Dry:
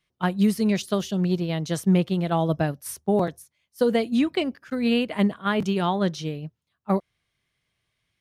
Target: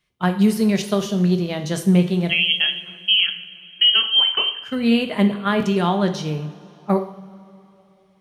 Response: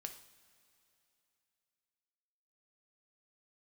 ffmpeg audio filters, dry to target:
-filter_complex "[0:a]asettb=1/sr,asplit=3[a][b][c];[a]atrim=end=2.294[d];[b]atrim=start=2.29:end=4.58,asetpts=PTS-STARTPTS,afade=t=in:d=0.004:c=qsin,afade=t=out:st=2.286:d=0.004:c=qsin,lowpass=f=2.9k:t=q:w=0.5098,lowpass=f=2.9k:t=q:w=0.6013,lowpass=f=2.9k:t=q:w=0.9,lowpass=f=2.9k:t=q:w=2.563,afreqshift=-3400[e];[c]atrim=start=4.576[f];[d][e]acrossfade=d=0.004:c1=hsin:c2=qsin[g];[g][f]acrossfade=d=0.004:c1=qsin:c2=hsin[h];[1:a]atrim=start_sample=2205[i];[h][i]afir=irnorm=-1:irlink=0,volume=8dB"

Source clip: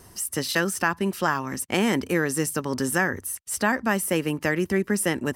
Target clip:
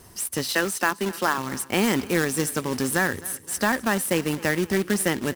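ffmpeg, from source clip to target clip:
-filter_complex "[0:a]asettb=1/sr,asplit=3[a][b][c];[a]atrim=end=0.504[d];[b]atrim=start=0.5:end=1.38,asetpts=PTS-STARTPTS,afade=t=in:d=0.004:c=qsin,afade=t=out:st=0.876:d=0.004:c=qsin,highpass=f=210:w=0.5412,highpass=f=210:w=1.3066[e];[c]atrim=start=1.376[f];[d][e]acrossfade=d=0.004:c1=hsin:c2=qsin[g];[g][f]acrossfade=d=0.004:c1=qsin:c2=hsin,acrusher=bits=2:mode=log:mix=0:aa=0.000001,asplit=2[h][i];[i]aecho=0:1:259|518|777|1036:0.1|0.055|0.0303|0.0166[j];[h][j]amix=inputs=2:normalize=0"

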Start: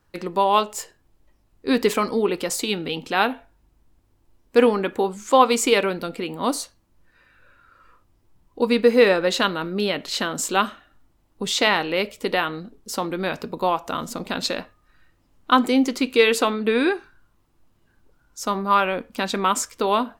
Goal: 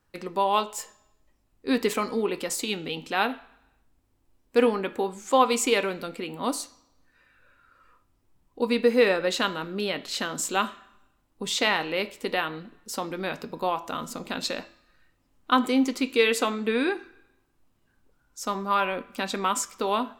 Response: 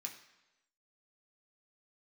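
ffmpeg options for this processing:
-filter_complex "[0:a]bandreject=f=333.9:t=h:w=4,bandreject=f=667.8:t=h:w=4,bandreject=f=1.0017k:t=h:w=4,bandreject=f=1.3356k:t=h:w=4,bandreject=f=1.6695k:t=h:w=4,bandreject=f=2.0034k:t=h:w=4,bandreject=f=2.3373k:t=h:w=4,bandreject=f=2.6712k:t=h:w=4,bandreject=f=3.0051k:t=h:w=4,bandreject=f=3.339k:t=h:w=4,bandreject=f=3.6729k:t=h:w=4,bandreject=f=4.0068k:t=h:w=4,bandreject=f=4.3407k:t=h:w=4,bandreject=f=4.6746k:t=h:w=4,bandreject=f=5.0085k:t=h:w=4,bandreject=f=5.3424k:t=h:w=4,bandreject=f=5.6763k:t=h:w=4,bandreject=f=6.0102k:t=h:w=4,bandreject=f=6.3441k:t=h:w=4,bandreject=f=6.678k:t=h:w=4,bandreject=f=7.0119k:t=h:w=4,bandreject=f=7.3458k:t=h:w=4,bandreject=f=7.6797k:t=h:w=4,asplit=2[a][b];[1:a]atrim=start_sample=2205[c];[b][c]afir=irnorm=-1:irlink=0,volume=-7dB[d];[a][d]amix=inputs=2:normalize=0,volume=-6dB"

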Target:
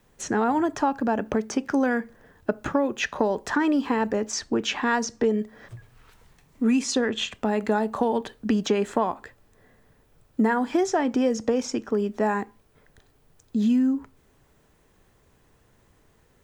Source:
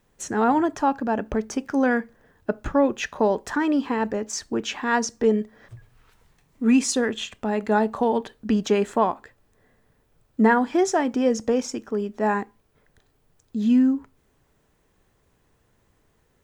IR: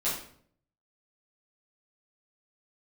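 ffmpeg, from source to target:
-filter_complex "[0:a]acrossover=split=110|6600[a][b][c];[a]acompressor=threshold=-54dB:ratio=4[d];[b]acompressor=threshold=-24dB:ratio=4[e];[c]acompressor=threshold=-53dB:ratio=4[f];[d][e][f]amix=inputs=3:normalize=0,volume=4dB"

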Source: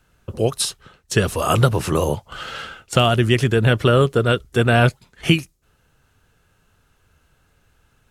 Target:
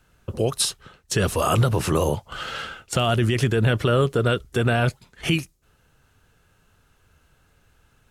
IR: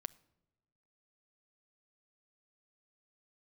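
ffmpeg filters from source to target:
-af "alimiter=limit=-10.5dB:level=0:latency=1:release=31"

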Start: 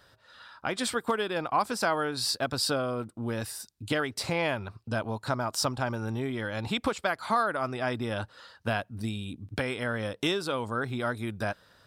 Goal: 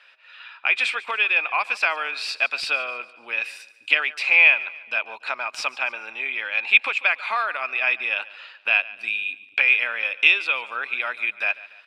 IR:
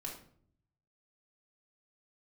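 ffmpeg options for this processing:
-af "highpass=590,aemphasis=mode=production:type=riaa,volume=9.5dB,asoftclip=hard,volume=-9.5dB,lowpass=f=2.5k:t=q:w=14,aecho=1:1:144|288|432|576:0.112|0.0505|0.0227|0.0102"

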